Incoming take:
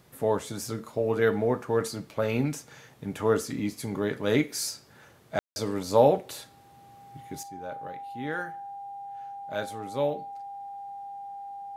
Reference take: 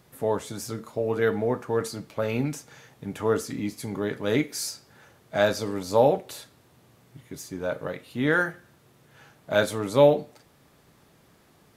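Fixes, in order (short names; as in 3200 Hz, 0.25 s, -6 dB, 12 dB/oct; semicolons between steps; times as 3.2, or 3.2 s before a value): notch 800 Hz, Q 30; room tone fill 5.39–5.56; gain correction +10.5 dB, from 7.43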